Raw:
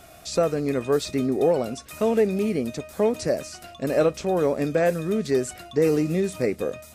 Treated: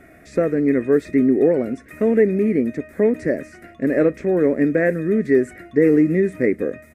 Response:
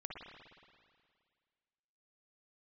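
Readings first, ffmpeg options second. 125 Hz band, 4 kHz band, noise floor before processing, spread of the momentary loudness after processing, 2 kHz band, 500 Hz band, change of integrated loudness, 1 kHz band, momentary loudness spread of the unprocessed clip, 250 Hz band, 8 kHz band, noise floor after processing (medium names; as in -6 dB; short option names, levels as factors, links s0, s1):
+2.5 dB, under -15 dB, -47 dBFS, 8 LU, +6.5 dB, +4.0 dB, +5.0 dB, -4.5 dB, 7 LU, +8.0 dB, under -10 dB, -47 dBFS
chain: -af "firequalizer=gain_entry='entry(120,0);entry(280,10);entry(830,-8);entry(1200,-5);entry(1900,12);entry(2900,-13);entry(4300,-17);entry(9500,-11)':delay=0.05:min_phase=1"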